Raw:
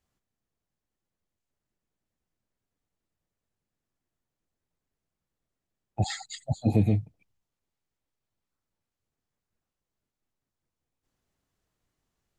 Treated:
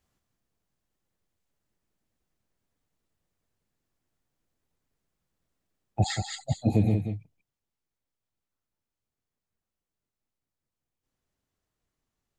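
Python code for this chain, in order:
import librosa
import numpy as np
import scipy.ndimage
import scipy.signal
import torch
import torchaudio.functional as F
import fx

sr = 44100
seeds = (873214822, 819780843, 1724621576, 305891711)

p1 = fx.rider(x, sr, range_db=10, speed_s=2.0)
y = p1 + fx.echo_single(p1, sr, ms=183, db=-7.5, dry=0)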